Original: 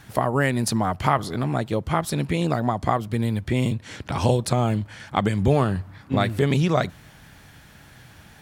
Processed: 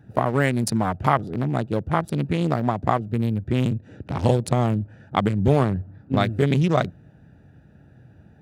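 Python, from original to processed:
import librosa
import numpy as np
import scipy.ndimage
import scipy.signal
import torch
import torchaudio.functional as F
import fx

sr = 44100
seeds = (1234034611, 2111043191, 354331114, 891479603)

y = fx.wiener(x, sr, points=41)
y = scipy.signal.sosfilt(scipy.signal.butter(2, 71.0, 'highpass', fs=sr, output='sos'), y)
y = y * librosa.db_to_amplitude(1.5)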